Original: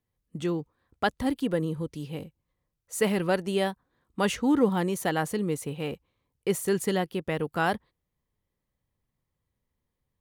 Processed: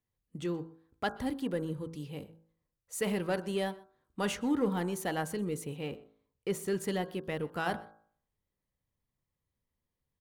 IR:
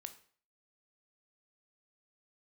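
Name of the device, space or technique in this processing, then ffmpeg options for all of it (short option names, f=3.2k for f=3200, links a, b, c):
parallel distortion: -filter_complex "[0:a]asplit=2[a][b];[b]asoftclip=type=hard:threshold=-25.5dB,volume=-7.5dB[c];[a][c]amix=inputs=2:normalize=0,bandreject=f=54.39:t=h:w=4,bandreject=f=108.78:t=h:w=4,bandreject=f=163.17:t=h:w=4,bandreject=f=217.56:t=h:w=4,bandreject=f=271.95:t=h:w=4,bandreject=f=326.34:t=h:w=4,bandreject=f=380.73:t=h:w=4,bandreject=f=435.12:t=h:w=4,bandreject=f=489.51:t=h:w=4,bandreject=f=543.9:t=h:w=4,bandreject=f=598.29:t=h:w=4,bandreject=f=652.68:t=h:w=4,bandreject=f=707.07:t=h:w=4,bandreject=f=761.46:t=h:w=4,bandreject=f=815.85:t=h:w=4,bandreject=f=870.24:t=h:w=4,bandreject=f=924.63:t=h:w=4,bandreject=f=979.02:t=h:w=4,bandreject=f=1.03341k:t=h:w=4,bandreject=f=1.0878k:t=h:w=4,bandreject=f=1.14219k:t=h:w=4,bandreject=f=1.19658k:t=h:w=4,bandreject=f=1.25097k:t=h:w=4,bandreject=f=1.30536k:t=h:w=4,bandreject=f=1.35975k:t=h:w=4,bandreject=f=1.41414k:t=h:w=4,bandreject=f=1.46853k:t=h:w=4,bandreject=f=1.52292k:t=h:w=4,bandreject=f=1.57731k:t=h:w=4,bandreject=f=1.6317k:t=h:w=4,asettb=1/sr,asplit=3[d][e][f];[d]atrim=end=5.794[g];[e]atrim=start=5.79:end=6.84,asetpts=PTS-STARTPTS,afade=t=in:d=0.004:c=qsin,afade=t=out:st=1.046:d=0.004:c=qsin,equalizer=f=12k:w=0.67:g=-5.5[h];[f]atrim=start=6.836[i];[g][h]acrossfade=d=0.004:c1=hsin:c2=qsin[j];[j][i]acrossfade=d=0.004:c1=qsin:c2=hsin,aecho=1:1:125:0.0708,volume=-8dB"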